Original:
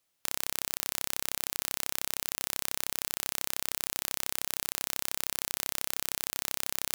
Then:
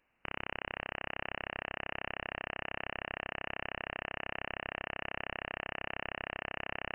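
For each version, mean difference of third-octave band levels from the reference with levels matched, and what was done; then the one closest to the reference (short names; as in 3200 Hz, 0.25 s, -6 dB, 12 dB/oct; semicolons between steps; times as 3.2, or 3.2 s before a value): 19.0 dB: hard clip -10 dBFS, distortion -42 dB; on a send: thinning echo 0.244 s, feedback 62%, high-pass 160 Hz, level -11 dB; on the sum: inverted band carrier 2900 Hz; gain +8.5 dB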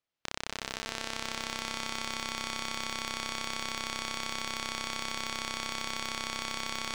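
6.5 dB: sample leveller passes 5; air absorption 130 m; on a send: swelling echo 0.126 s, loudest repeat 5, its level -9 dB; on the sum: gain +3 dB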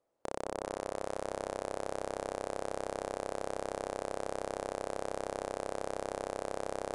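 12.0 dB: EQ curve 170 Hz 0 dB, 540 Hz +14 dB, 2900 Hz -16 dB; on a send: echo with dull and thin repeats by turns 0.203 s, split 1200 Hz, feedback 81%, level -10.5 dB; on the sum: downsampling 22050 Hz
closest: second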